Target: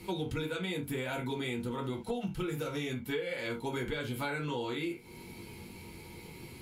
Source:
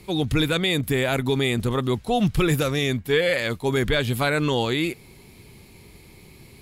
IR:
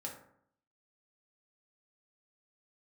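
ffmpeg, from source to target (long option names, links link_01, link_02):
-filter_complex "[1:a]atrim=start_sample=2205,afade=type=out:start_time=0.19:duration=0.01,atrim=end_sample=8820,asetrate=74970,aresample=44100[link_01];[0:a][link_01]afir=irnorm=-1:irlink=0,acompressor=threshold=-39dB:ratio=10,volume=6.5dB"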